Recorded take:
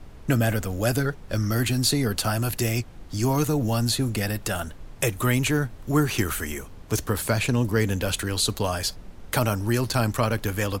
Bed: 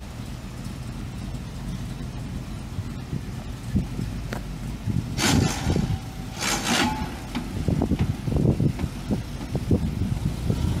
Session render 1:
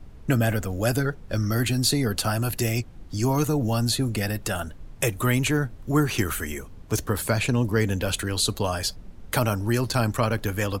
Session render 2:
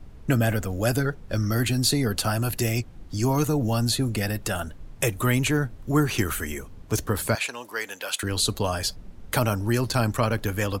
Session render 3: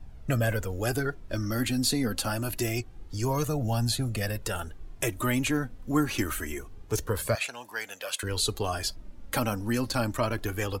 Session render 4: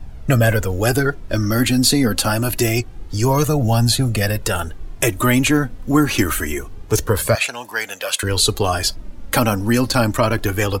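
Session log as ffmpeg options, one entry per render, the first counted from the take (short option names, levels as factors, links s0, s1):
-af "afftdn=nr=6:nf=-43"
-filter_complex "[0:a]asettb=1/sr,asplit=3[s0][s1][s2];[s0]atrim=end=7.354[s3];[s1]atrim=start=7.35:end=8.23,asetpts=PTS-STARTPTS,afade=t=in:d=0.004:c=qsin,afade=t=out:st=0.876:d=0.004:c=qsin,highpass=820[s4];[s2]atrim=start=8.226[s5];[s3][s4]acrossfade=d=0.004:c1=hsin:c2=qsin[s6];[s6][s5]acrossfade=d=0.004:c1=qsin:c2=hsin"
-af "flanger=delay=1.1:depth=3:regen=32:speed=0.26:shape=triangular"
-af "volume=3.76,alimiter=limit=0.708:level=0:latency=1"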